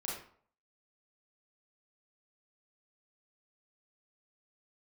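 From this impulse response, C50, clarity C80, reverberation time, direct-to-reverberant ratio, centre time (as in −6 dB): 1.5 dB, 7.0 dB, 0.55 s, −5.0 dB, 50 ms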